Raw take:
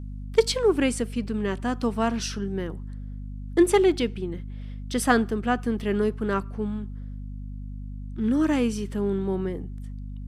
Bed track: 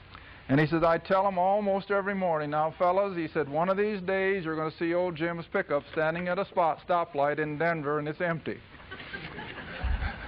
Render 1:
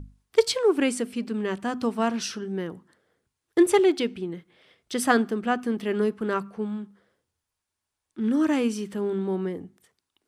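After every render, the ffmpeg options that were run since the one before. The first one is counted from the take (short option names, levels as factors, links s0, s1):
-af "bandreject=f=50:t=h:w=6,bandreject=f=100:t=h:w=6,bandreject=f=150:t=h:w=6,bandreject=f=200:t=h:w=6,bandreject=f=250:t=h:w=6"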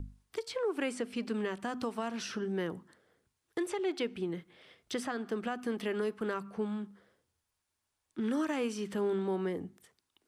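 -filter_complex "[0:a]acrossover=split=440|2400|7200[s0][s1][s2][s3];[s0]acompressor=threshold=0.0178:ratio=4[s4];[s1]acompressor=threshold=0.0398:ratio=4[s5];[s2]acompressor=threshold=0.00631:ratio=4[s6];[s3]acompressor=threshold=0.00178:ratio=4[s7];[s4][s5][s6][s7]amix=inputs=4:normalize=0,alimiter=level_in=1.06:limit=0.0631:level=0:latency=1:release=233,volume=0.944"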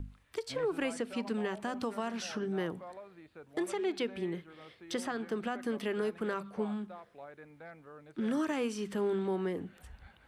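-filter_complex "[1:a]volume=0.075[s0];[0:a][s0]amix=inputs=2:normalize=0"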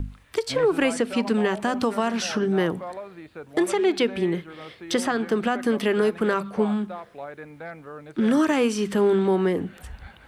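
-af "volume=3.98"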